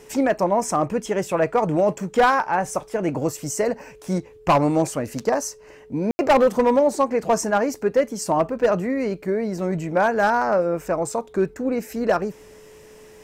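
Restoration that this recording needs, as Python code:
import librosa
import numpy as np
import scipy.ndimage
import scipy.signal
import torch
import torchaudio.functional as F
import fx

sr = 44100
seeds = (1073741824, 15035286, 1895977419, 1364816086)

y = fx.fix_declip(x, sr, threshold_db=-11.0)
y = fx.notch(y, sr, hz=430.0, q=30.0)
y = fx.fix_ambience(y, sr, seeds[0], print_start_s=12.65, print_end_s=13.15, start_s=6.11, end_s=6.19)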